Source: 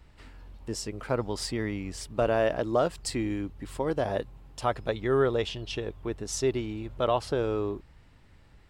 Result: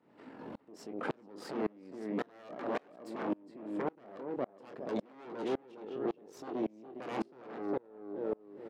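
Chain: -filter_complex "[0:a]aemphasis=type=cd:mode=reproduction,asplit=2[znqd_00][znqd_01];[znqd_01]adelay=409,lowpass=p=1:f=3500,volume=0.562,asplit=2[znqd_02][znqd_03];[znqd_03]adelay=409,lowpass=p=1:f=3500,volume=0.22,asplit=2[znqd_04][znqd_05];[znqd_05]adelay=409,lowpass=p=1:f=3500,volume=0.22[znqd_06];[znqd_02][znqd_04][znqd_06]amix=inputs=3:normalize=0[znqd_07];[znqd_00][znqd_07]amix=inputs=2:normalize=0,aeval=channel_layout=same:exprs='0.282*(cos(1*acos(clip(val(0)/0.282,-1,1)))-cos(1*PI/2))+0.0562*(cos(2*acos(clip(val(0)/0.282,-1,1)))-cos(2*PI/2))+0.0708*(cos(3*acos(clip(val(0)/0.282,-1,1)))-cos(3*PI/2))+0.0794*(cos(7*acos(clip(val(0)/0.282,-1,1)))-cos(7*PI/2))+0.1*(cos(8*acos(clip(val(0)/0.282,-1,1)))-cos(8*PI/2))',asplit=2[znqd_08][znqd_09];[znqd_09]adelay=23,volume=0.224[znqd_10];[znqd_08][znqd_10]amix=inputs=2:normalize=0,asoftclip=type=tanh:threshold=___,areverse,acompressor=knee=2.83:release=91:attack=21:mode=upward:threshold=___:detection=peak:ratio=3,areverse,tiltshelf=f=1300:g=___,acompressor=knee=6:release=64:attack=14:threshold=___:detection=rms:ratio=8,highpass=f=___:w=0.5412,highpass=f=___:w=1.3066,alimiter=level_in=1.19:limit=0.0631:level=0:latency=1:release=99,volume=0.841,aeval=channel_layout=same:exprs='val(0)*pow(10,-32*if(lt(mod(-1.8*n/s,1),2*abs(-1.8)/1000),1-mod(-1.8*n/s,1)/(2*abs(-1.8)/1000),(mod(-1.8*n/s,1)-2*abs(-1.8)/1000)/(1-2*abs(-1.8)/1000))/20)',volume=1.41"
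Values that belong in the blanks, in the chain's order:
0.141, 0.0447, 9, 0.0794, 220, 220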